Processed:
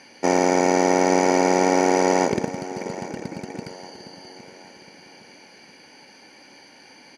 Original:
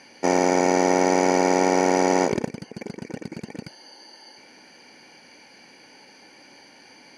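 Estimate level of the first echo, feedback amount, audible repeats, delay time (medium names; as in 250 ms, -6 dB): -15.0 dB, 43%, 3, 813 ms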